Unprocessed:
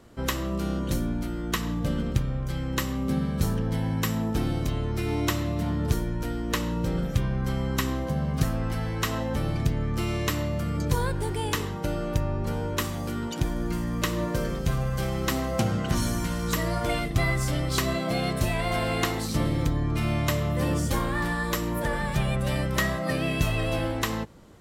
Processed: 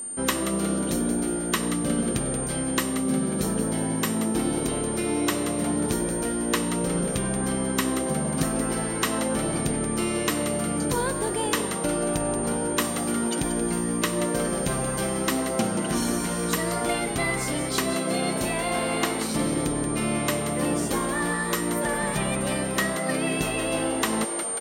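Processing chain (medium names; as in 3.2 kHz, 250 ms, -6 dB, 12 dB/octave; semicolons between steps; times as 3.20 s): resonant low shelf 150 Hz -11.5 dB, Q 1.5; frequency-shifting echo 180 ms, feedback 48%, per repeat +120 Hz, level -10 dB; whistle 9 kHz -35 dBFS; gain riding 0.5 s; trim +2 dB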